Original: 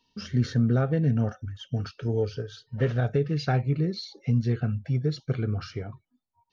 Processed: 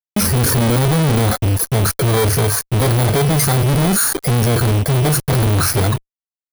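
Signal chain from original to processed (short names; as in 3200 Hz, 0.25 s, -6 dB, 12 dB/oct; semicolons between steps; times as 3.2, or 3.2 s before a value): FFT order left unsorted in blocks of 16 samples; fuzz box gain 50 dB, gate -53 dBFS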